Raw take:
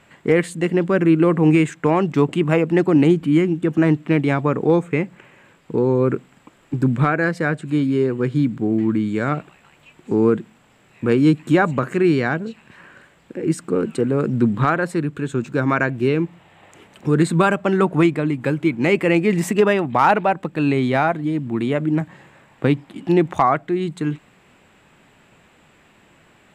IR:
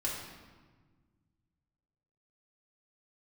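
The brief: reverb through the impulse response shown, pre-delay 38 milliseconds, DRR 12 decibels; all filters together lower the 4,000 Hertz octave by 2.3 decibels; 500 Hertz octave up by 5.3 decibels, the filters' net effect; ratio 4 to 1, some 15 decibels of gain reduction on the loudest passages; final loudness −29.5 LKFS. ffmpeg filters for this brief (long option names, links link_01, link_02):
-filter_complex "[0:a]equalizer=frequency=500:width_type=o:gain=7,equalizer=frequency=4000:width_type=o:gain=-3.5,acompressor=threshold=-25dB:ratio=4,asplit=2[link_01][link_02];[1:a]atrim=start_sample=2205,adelay=38[link_03];[link_02][link_03]afir=irnorm=-1:irlink=0,volume=-16dB[link_04];[link_01][link_04]amix=inputs=2:normalize=0,volume=-2dB"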